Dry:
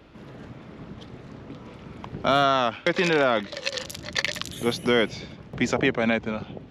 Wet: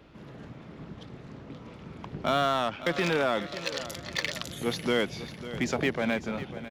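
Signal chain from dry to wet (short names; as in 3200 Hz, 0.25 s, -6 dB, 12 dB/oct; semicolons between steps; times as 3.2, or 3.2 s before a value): bell 160 Hz +3.5 dB 0.27 oct; in parallel at -11 dB: wavefolder -26 dBFS; on the sum: feedback echo 0.548 s, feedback 50%, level -14 dB; gain -5.5 dB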